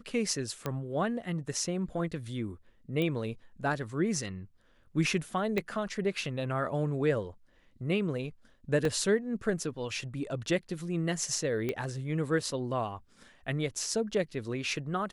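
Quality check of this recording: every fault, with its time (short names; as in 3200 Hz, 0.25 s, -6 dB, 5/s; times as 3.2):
0.66 pop -18 dBFS
3.02 pop -20 dBFS
5.58 pop -18 dBFS
8.85 gap 2.2 ms
11.69 pop -19 dBFS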